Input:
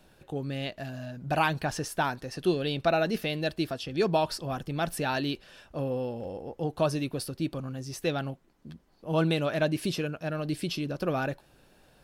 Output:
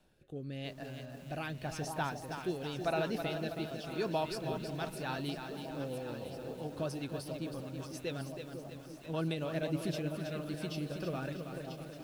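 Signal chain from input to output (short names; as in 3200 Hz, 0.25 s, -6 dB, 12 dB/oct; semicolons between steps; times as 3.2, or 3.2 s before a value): echo with dull and thin repeats by turns 0.499 s, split 930 Hz, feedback 75%, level -8 dB; rotary speaker horn 0.9 Hz, later 7.5 Hz, at 4.5; lo-fi delay 0.322 s, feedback 55%, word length 8-bit, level -7 dB; gain -7.5 dB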